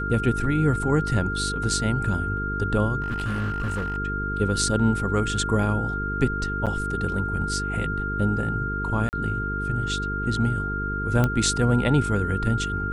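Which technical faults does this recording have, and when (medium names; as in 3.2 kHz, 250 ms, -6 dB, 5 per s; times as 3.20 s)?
buzz 50 Hz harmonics 9 -30 dBFS
whine 1.4 kHz -28 dBFS
3.02–3.98 s: clipped -23 dBFS
6.66–6.67 s: dropout 7.5 ms
9.09–9.13 s: dropout 39 ms
11.24 s: pop -10 dBFS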